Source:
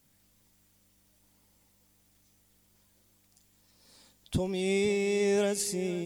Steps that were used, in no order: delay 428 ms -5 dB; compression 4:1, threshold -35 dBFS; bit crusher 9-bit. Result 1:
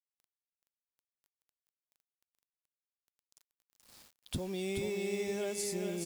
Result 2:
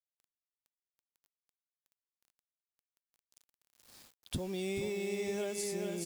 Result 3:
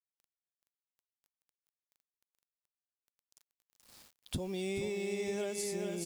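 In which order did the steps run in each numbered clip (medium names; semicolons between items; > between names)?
compression > bit crusher > delay; delay > compression > bit crusher; bit crusher > delay > compression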